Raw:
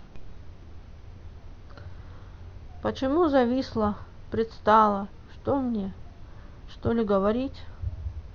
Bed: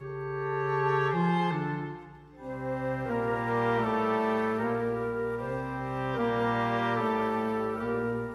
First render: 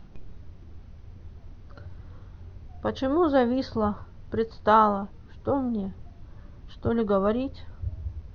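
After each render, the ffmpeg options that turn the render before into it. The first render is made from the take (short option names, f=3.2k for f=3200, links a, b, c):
-af "afftdn=nr=6:nf=-47"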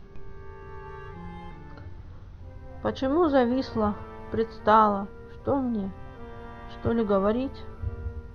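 -filter_complex "[1:a]volume=-16dB[a];[0:a][a]amix=inputs=2:normalize=0"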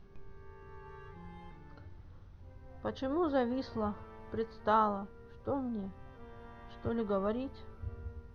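-af "volume=-9.5dB"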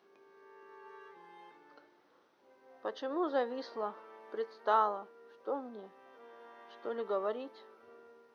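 -af "highpass=f=330:w=0.5412,highpass=f=330:w=1.3066"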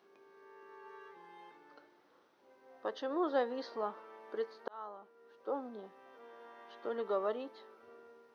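-filter_complex "[0:a]asplit=2[a][b];[a]atrim=end=4.68,asetpts=PTS-STARTPTS,afade=t=out:st=4.676:d=0.004:c=hsin[c];[b]atrim=start=4.68,asetpts=PTS-STARTPTS,afade=t=in:d=0.94[d];[c][d]concat=n=2:v=0:a=1"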